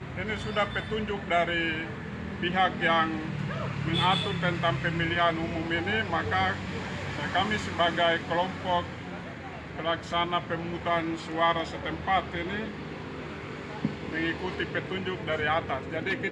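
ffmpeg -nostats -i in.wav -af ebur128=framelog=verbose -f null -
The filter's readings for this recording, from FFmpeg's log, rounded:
Integrated loudness:
  I:         -28.9 LUFS
  Threshold: -38.9 LUFS
Loudness range:
  LRA:         4.7 LU
  Threshold: -48.8 LUFS
  LRA low:   -31.8 LUFS
  LRA high:  -27.1 LUFS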